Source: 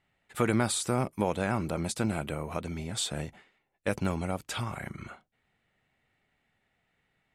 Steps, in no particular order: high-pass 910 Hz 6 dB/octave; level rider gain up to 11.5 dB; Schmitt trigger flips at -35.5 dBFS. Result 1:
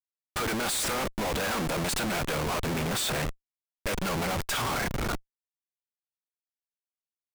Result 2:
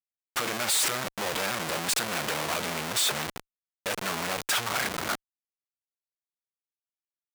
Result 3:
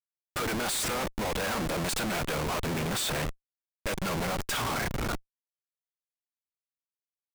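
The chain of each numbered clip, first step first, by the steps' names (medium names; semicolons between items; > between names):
high-pass > level rider > Schmitt trigger; level rider > Schmitt trigger > high-pass; level rider > high-pass > Schmitt trigger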